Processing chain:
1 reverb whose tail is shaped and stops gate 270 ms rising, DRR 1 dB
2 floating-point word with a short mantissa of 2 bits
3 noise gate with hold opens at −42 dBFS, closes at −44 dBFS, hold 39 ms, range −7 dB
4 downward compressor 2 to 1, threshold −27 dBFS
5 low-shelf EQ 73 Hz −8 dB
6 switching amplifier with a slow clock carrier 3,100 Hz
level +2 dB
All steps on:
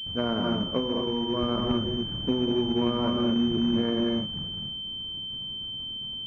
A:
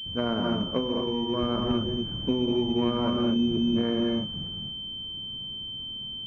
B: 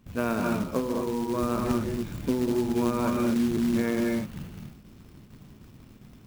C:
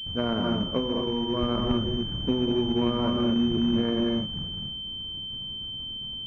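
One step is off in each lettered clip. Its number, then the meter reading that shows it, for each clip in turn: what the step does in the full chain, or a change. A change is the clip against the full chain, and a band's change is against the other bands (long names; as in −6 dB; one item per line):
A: 2, distortion level −20 dB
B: 6, 2 kHz band +6.0 dB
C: 5, 125 Hz band +2.0 dB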